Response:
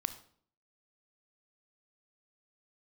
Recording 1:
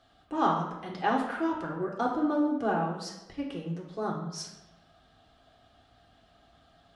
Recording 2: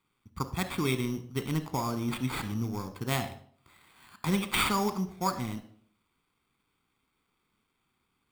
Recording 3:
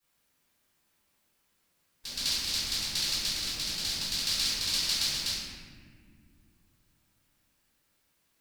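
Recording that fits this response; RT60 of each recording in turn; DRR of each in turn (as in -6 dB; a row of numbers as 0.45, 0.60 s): 2; 1.0 s, 0.55 s, not exponential; -2.0, 10.0, -16.5 dB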